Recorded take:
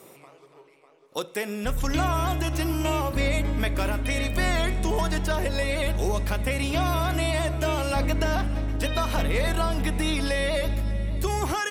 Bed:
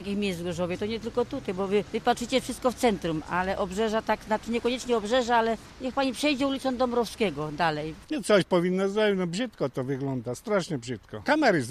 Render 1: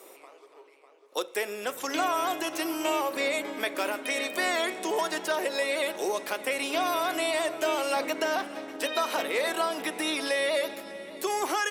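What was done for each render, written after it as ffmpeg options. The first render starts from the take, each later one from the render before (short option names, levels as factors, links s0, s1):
-af "highpass=f=330:w=0.5412,highpass=f=330:w=1.3066"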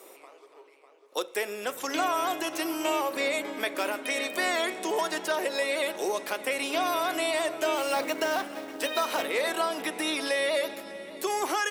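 -filter_complex "[0:a]asettb=1/sr,asplit=3[s0][s1][s2];[s0]atrim=end=7.764[s3];[s1]atrim=start=7.76:end=9.26,asetpts=PTS-STARTPTS,afade=t=in:d=0.004:c=qsin,afade=t=out:st=1.496:d=0.004:c=qsin,acrusher=bits=4:mode=log:mix=0:aa=0.000001[s4];[s2]atrim=start=9.256[s5];[s3][s4]acrossfade=d=0.004:c1=hsin:c2=qsin[s6];[s6][s5]acrossfade=d=0.004:c1=qsin:c2=hsin"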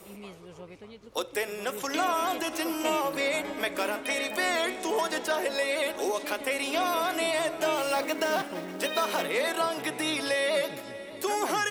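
-filter_complex "[1:a]volume=0.141[s0];[0:a][s0]amix=inputs=2:normalize=0"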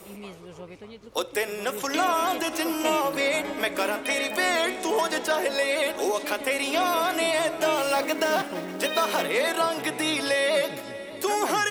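-af "volume=1.5"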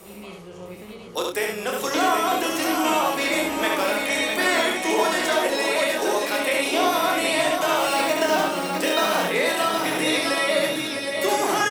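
-filter_complex "[0:a]asplit=2[s0][s1];[s1]adelay=28,volume=0.562[s2];[s0][s2]amix=inputs=2:normalize=0,aecho=1:1:71|657|769:0.708|0.447|0.531"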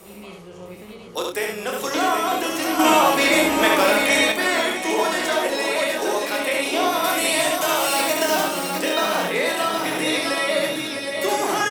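-filter_complex "[0:a]asettb=1/sr,asplit=3[s0][s1][s2];[s0]atrim=end=2.794[s3];[s1]atrim=start=2.79:end=4.32,asetpts=PTS-STARTPTS,afade=t=in:d=0.004:c=qsin,afade=t=out:st=1.526:d=0.004:c=qsin,acontrast=55[s4];[s2]atrim=start=4.316[s5];[s3][s4]acrossfade=d=0.004:c1=hsin:c2=qsin[s6];[s6][s5]acrossfade=d=0.004:c1=qsin:c2=hsin,asettb=1/sr,asplit=3[s7][s8][s9];[s7]atrim=end=7.044[s10];[s8]atrim=start=7.04:end=8.8,asetpts=PTS-STARTPTS,afade=t=in:d=0.004:c=qsin,afade=t=out:st=1.756:d=0.004:c=qsin,aemphasis=mode=production:type=cd[s11];[s9]atrim=start=8.796[s12];[s10][s11]acrossfade=d=0.004:c1=hsin:c2=qsin[s13];[s13][s12]acrossfade=d=0.004:c1=qsin:c2=hsin"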